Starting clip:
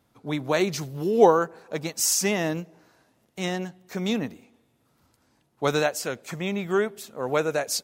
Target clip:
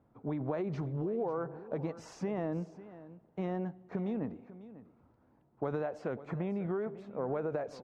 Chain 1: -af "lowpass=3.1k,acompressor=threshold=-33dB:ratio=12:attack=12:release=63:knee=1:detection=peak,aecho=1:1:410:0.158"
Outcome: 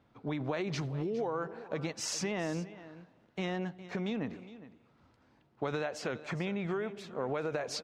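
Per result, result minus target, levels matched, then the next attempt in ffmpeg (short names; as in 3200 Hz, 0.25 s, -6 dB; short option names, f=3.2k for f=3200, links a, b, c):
4000 Hz band +17.5 dB; echo 0.136 s early
-af "lowpass=1k,acompressor=threshold=-33dB:ratio=12:attack=12:release=63:knee=1:detection=peak,aecho=1:1:410:0.158"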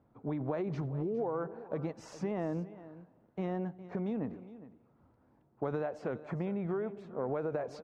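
echo 0.136 s early
-af "lowpass=1k,acompressor=threshold=-33dB:ratio=12:attack=12:release=63:knee=1:detection=peak,aecho=1:1:546:0.158"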